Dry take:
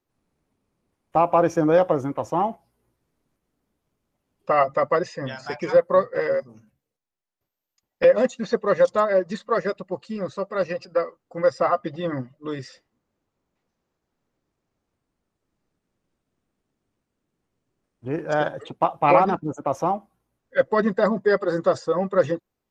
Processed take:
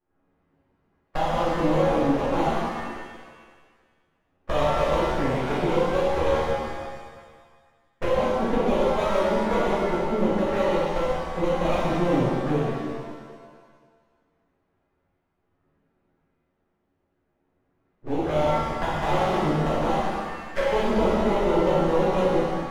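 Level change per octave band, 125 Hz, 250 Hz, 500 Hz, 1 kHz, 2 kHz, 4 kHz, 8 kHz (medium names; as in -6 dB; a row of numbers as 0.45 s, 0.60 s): +4.5 dB, +2.5 dB, -2.0 dB, -1.0 dB, -1.0 dB, +6.0 dB, no reading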